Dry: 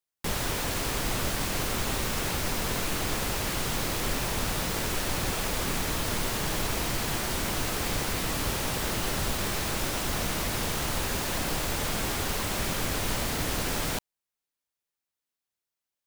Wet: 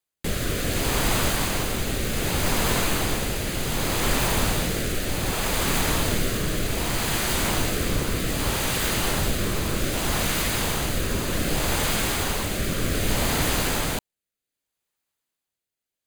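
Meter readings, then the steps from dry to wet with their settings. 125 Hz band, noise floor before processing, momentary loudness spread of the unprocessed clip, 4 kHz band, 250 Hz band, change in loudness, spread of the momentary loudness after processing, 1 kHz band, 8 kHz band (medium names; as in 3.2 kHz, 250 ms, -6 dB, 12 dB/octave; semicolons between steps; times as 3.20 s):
+6.0 dB, under -85 dBFS, 0 LU, +4.5 dB, +6.0 dB, +4.5 dB, 4 LU, +3.5 dB, +4.5 dB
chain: band-stop 5.5 kHz, Q 7.6; rotary cabinet horn 0.65 Hz; trim +7.5 dB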